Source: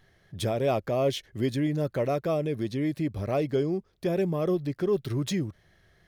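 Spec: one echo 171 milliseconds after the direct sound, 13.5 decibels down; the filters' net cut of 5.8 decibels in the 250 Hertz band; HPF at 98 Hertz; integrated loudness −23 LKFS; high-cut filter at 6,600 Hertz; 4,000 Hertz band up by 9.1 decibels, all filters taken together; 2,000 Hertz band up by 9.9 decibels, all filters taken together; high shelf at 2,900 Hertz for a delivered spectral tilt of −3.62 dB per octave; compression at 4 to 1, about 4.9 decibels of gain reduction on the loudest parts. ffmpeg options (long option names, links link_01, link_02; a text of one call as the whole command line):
ffmpeg -i in.wav -af "highpass=98,lowpass=6600,equalizer=frequency=250:width_type=o:gain=-9,equalizer=frequency=2000:width_type=o:gain=8.5,highshelf=frequency=2900:gain=6.5,equalizer=frequency=4000:width_type=o:gain=4,acompressor=threshold=-27dB:ratio=4,aecho=1:1:171:0.211,volume=9dB" out.wav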